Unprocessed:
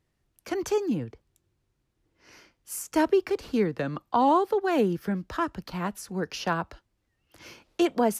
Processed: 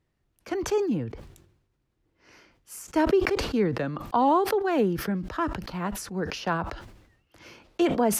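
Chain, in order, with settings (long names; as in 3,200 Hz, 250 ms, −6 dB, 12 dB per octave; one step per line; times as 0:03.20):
high-shelf EQ 5,000 Hz −8 dB
level that may fall only so fast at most 66 dB per second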